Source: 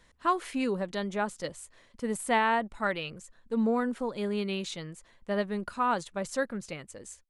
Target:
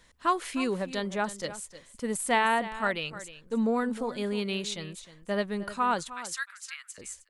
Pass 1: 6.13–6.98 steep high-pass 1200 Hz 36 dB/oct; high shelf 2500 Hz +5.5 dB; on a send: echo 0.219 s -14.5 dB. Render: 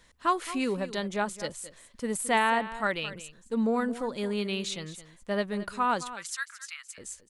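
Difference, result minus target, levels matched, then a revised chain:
echo 90 ms early
6.13–6.98 steep high-pass 1200 Hz 36 dB/oct; high shelf 2500 Hz +5.5 dB; on a send: echo 0.309 s -14.5 dB

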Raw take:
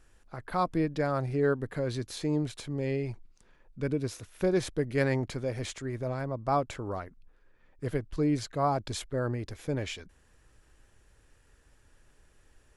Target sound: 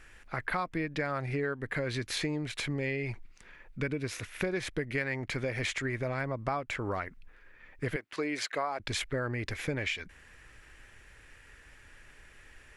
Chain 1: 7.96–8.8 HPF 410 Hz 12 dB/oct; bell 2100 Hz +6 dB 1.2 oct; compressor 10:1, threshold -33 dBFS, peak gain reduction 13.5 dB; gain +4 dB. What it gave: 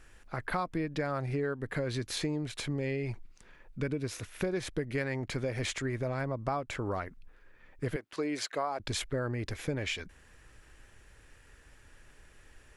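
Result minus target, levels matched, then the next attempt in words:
2000 Hz band -4.0 dB
7.96–8.8 HPF 410 Hz 12 dB/oct; bell 2100 Hz +14 dB 1.2 oct; compressor 10:1, threshold -33 dBFS, peak gain reduction 17 dB; gain +4 dB

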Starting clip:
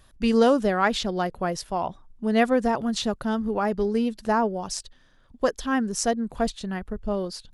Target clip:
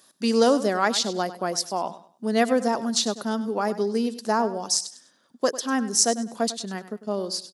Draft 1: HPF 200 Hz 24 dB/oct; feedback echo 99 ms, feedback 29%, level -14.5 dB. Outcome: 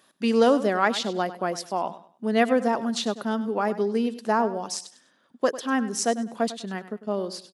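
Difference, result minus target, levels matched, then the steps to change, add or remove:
8000 Hz band -8.0 dB
add after HPF: resonant high shelf 3800 Hz +7.5 dB, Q 1.5

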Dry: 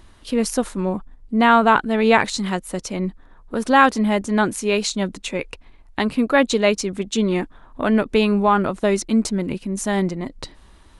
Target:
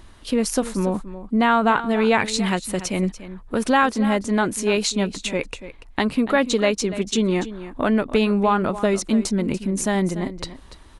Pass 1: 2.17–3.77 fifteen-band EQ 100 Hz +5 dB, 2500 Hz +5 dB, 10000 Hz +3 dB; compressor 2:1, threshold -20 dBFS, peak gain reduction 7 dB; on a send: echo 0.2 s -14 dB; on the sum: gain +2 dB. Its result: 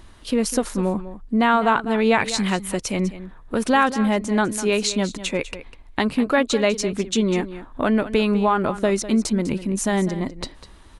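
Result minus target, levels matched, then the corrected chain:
echo 89 ms early
2.17–3.77 fifteen-band EQ 100 Hz +5 dB, 2500 Hz +5 dB, 10000 Hz +3 dB; compressor 2:1, threshold -20 dBFS, peak gain reduction 7 dB; on a send: echo 0.289 s -14 dB; on the sum: gain +2 dB

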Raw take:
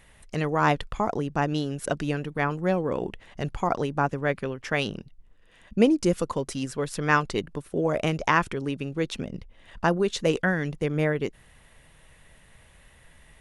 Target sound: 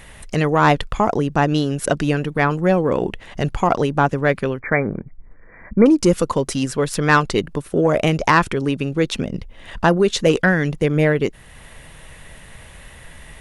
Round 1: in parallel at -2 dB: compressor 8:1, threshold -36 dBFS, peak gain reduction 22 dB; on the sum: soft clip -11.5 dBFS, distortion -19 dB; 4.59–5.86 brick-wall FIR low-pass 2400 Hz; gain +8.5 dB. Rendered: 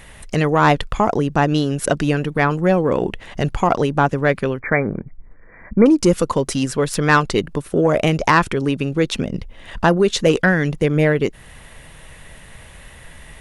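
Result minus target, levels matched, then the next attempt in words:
compressor: peak gain reduction -8 dB
in parallel at -2 dB: compressor 8:1, threshold -45 dBFS, peak gain reduction 29.5 dB; on the sum: soft clip -11.5 dBFS, distortion -20 dB; 4.59–5.86 brick-wall FIR low-pass 2400 Hz; gain +8.5 dB

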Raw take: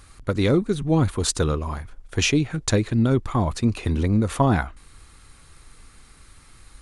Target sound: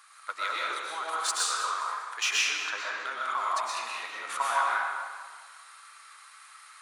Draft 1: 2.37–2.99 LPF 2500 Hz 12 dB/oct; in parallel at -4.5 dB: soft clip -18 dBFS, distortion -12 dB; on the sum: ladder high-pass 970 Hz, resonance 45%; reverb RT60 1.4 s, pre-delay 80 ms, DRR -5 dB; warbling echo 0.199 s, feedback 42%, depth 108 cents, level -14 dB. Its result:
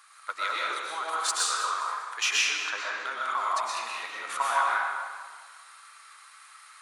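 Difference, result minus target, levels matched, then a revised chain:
soft clip: distortion -6 dB
2.37–2.99 LPF 2500 Hz 12 dB/oct; in parallel at -4.5 dB: soft clip -27 dBFS, distortion -5 dB; on the sum: ladder high-pass 970 Hz, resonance 45%; reverb RT60 1.4 s, pre-delay 80 ms, DRR -5 dB; warbling echo 0.199 s, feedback 42%, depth 108 cents, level -14 dB

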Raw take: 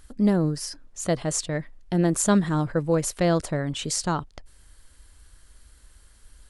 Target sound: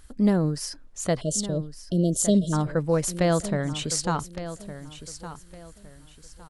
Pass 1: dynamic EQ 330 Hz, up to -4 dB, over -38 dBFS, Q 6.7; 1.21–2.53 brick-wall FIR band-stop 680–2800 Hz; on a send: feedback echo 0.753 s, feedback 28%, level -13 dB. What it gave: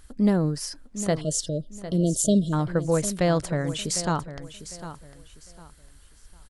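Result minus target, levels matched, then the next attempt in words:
echo 0.408 s early
dynamic EQ 330 Hz, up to -4 dB, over -38 dBFS, Q 6.7; 1.21–2.53 brick-wall FIR band-stop 680–2800 Hz; on a send: feedback echo 1.161 s, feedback 28%, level -13 dB

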